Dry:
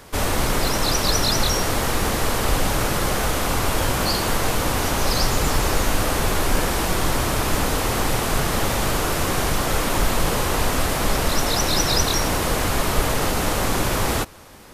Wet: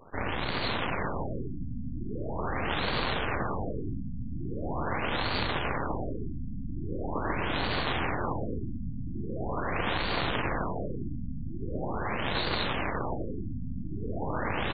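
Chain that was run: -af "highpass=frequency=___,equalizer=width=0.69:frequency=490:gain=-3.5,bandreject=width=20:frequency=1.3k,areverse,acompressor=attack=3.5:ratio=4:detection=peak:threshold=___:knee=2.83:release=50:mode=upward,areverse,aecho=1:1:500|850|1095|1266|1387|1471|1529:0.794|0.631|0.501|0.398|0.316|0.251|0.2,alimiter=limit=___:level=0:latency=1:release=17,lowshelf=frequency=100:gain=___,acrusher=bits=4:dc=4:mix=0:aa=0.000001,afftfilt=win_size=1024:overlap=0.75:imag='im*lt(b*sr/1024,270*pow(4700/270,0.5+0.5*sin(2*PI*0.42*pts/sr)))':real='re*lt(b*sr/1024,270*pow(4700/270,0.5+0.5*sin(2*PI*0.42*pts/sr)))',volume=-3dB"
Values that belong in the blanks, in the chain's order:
46, -39dB, -14dB, -5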